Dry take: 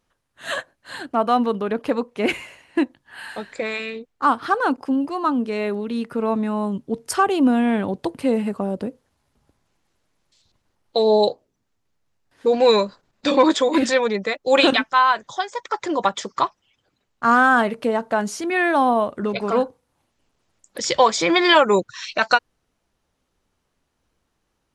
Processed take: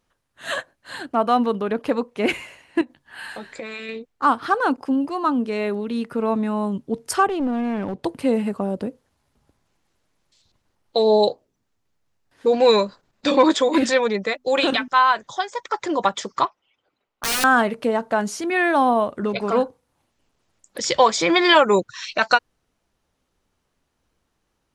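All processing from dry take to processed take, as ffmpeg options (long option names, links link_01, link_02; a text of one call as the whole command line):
ffmpeg -i in.wav -filter_complex "[0:a]asettb=1/sr,asplit=3[link_01][link_02][link_03];[link_01]atrim=end=2.814[link_04];[link_02]atrim=start=2.81:end=3.89,asetpts=PTS-STARTPTS,afade=type=in:duration=0.004:curve=qsin,afade=type=out:start_time=1.076:duration=0.004:curve=qsin,acompressor=threshold=-29dB:ratio=6:attack=3.2:release=140:knee=1:detection=peak,asplit=2[link_05][link_06];[link_06]adelay=13,volume=-9dB[link_07];[link_05][link_07]amix=inputs=2:normalize=0,atrim=end_sample=47628[link_08];[link_03]atrim=start=3.886[link_09];[link_04][link_08]acrossfade=duration=0.004:curve1=hsin:curve2=qsin[link_10];[link_10][link_09]acrossfade=duration=0.004:curve1=qsin:curve2=hsin,asettb=1/sr,asplit=3[link_11][link_12][link_13];[link_11]atrim=end=7.274[link_14];[link_12]atrim=start=7.27:end=8.04,asetpts=PTS-STARTPTS,afade=type=in:duration=0.004:curve=qsin,afade=type=out:start_time=0.766:duration=0.004:curve=qsin,lowpass=frequency=2400:poles=1,acompressor=threshold=-23dB:ratio=2:attack=3.2:release=140:knee=1:detection=peak,aeval=exprs='clip(val(0),-1,0.0708)':channel_layout=same[link_15];[link_13]atrim=start=8.036[link_16];[link_14][link_15]acrossfade=duration=0.004:curve1=hsin:curve2=qsin[link_17];[link_17][link_16]acrossfade=duration=0.004:curve1=qsin:curve2=hsin,asettb=1/sr,asplit=3[link_18][link_19][link_20];[link_18]atrim=end=14.344[link_21];[link_19]atrim=start=14.34:end=14.88,asetpts=PTS-STARTPTS,afade=type=in:duration=0.004:curve=qsin,afade=type=out:start_time=0.536:duration=0.004:curve=qsin,bandreject=frequency=50:width_type=h:width=6,bandreject=frequency=100:width_type=h:width=6,bandreject=frequency=150:width_type=h:width=6,bandreject=frequency=200:width_type=h:width=6,bandreject=frequency=250:width_type=h:width=6,acompressor=threshold=-16dB:ratio=3:attack=3.2:release=140:knee=1:detection=peak[link_22];[link_20]atrim=start=14.876[link_23];[link_21][link_22]acrossfade=duration=0.004:curve1=hsin:curve2=qsin[link_24];[link_24][link_23]acrossfade=duration=0.004:curve1=qsin:curve2=hsin,asettb=1/sr,asplit=3[link_25][link_26][link_27];[link_25]atrim=end=16.454[link_28];[link_26]atrim=start=16.45:end=17.44,asetpts=PTS-STARTPTS,afade=type=in:duration=0.004:curve=qsin,afade=type=out:start_time=0.986:duration=0.004:curve=qsin,bass=frequency=250:gain=-13,treble=frequency=4000:gain=-13,bandreject=frequency=1700:width=9.3,aeval=exprs='(mod(7.5*val(0)+1,2)-1)/7.5':channel_layout=same[link_29];[link_27]atrim=start=17.436[link_30];[link_28][link_29]acrossfade=duration=0.004:curve1=hsin:curve2=qsin[link_31];[link_31][link_30]acrossfade=duration=0.004:curve1=qsin:curve2=hsin" out.wav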